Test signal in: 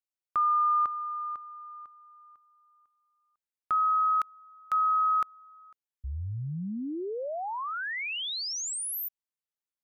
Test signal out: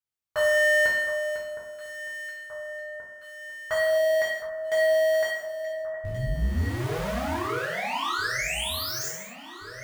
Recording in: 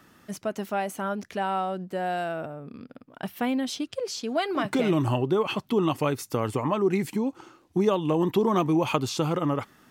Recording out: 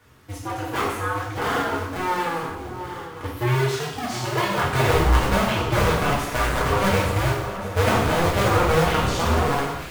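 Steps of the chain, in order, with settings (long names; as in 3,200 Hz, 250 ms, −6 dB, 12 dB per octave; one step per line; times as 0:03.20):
sub-harmonics by changed cycles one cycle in 2, inverted
parametric band 71 Hz +9.5 dB 2.2 octaves
reverb whose tail is shaped and stops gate 290 ms falling, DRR −6.5 dB
dynamic equaliser 1,500 Hz, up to +5 dB, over −34 dBFS, Q 0.83
on a send: delay that swaps between a low-pass and a high-pass 714 ms, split 1,600 Hz, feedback 76%, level −10.5 dB
on the sum: level −6 dB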